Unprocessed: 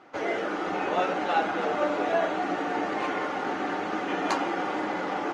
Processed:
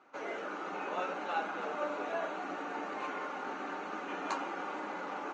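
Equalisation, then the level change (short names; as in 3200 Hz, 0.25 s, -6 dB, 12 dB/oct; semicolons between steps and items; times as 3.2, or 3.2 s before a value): speaker cabinet 270–7500 Hz, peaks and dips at 330 Hz -7 dB, 480 Hz -5 dB, 720 Hz -7 dB, 1900 Hz -7 dB, 3300 Hz -7 dB, 5000 Hz -8 dB; -5.5 dB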